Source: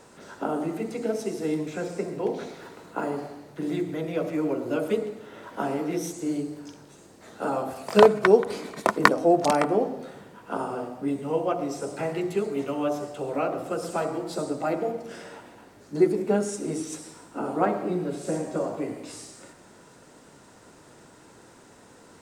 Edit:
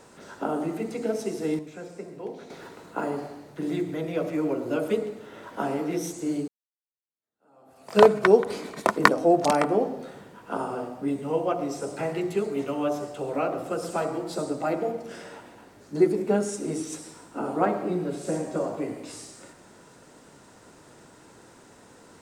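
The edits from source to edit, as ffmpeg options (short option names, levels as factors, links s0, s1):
-filter_complex "[0:a]asplit=4[s0][s1][s2][s3];[s0]atrim=end=1.592[s4];[s1]atrim=start=1.588:end=2.502,asetpts=PTS-STARTPTS,volume=0.376[s5];[s2]atrim=start=2.498:end=6.48,asetpts=PTS-STARTPTS,afade=t=out:st=3.978:d=0.004:c=hsin[s6];[s3]atrim=start=6.48,asetpts=PTS-STARTPTS,afade=t=in:d=1.54:c=exp[s7];[s4][s5]acrossfade=d=0.004:c1=hsin:c2=hsin[s8];[s6][s7]concat=n=2:v=0:a=1[s9];[s8][s9]acrossfade=d=0.004:c1=hsin:c2=hsin"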